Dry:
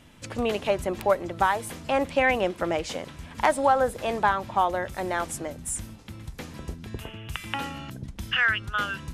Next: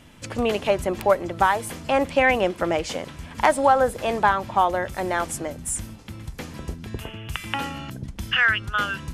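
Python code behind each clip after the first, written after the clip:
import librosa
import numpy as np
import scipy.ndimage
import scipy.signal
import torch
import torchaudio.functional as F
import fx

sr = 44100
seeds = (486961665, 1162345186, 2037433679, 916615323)

y = fx.notch(x, sr, hz=3800.0, q=25.0)
y = F.gain(torch.from_numpy(y), 3.5).numpy()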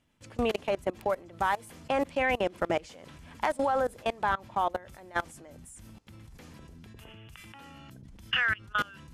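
y = fx.level_steps(x, sr, step_db=23)
y = F.gain(torch.from_numpy(y), -3.0).numpy()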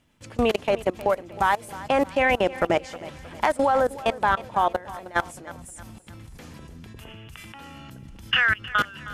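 y = fx.echo_feedback(x, sr, ms=313, feedback_pct=45, wet_db=-17.0)
y = F.gain(torch.from_numpy(y), 6.5).numpy()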